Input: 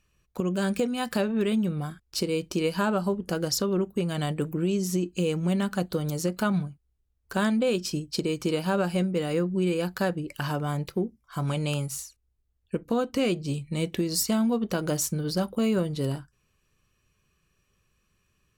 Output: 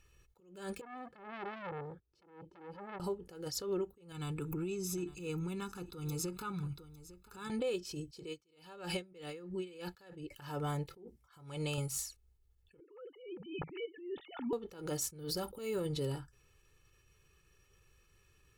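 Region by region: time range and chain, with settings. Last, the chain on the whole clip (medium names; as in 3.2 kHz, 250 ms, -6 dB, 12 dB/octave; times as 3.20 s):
0.81–3.00 s: compression 3:1, threshold -34 dBFS + band-pass filter 240 Hz, Q 1 + transformer saturation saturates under 1.5 kHz
4.12–7.50 s: comb 0.8 ms, depth 82% + compression 10:1, threshold -33 dBFS + delay 854 ms -18.5 dB
8.27–10.31 s: peaking EQ 3.2 kHz +6 dB 2.1 oct + logarithmic tremolo 3.1 Hz, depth 28 dB
10.93–11.78 s: high-pass 46 Hz + compression 3:1, threshold -30 dBFS
12.80–14.53 s: formants replaced by sine waves + compression 2.5:1, threshold -27 dBFS
15.19–15.86 s: treble shelf 11 kHz +12 dB + compression 3:1, threshold -27 dBFS
whole clip: comb 2.3 ms, depth 66%; compression, threshold -34 dBFS; attacks held to a fixed rise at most 100 dB/s; trim +1 dB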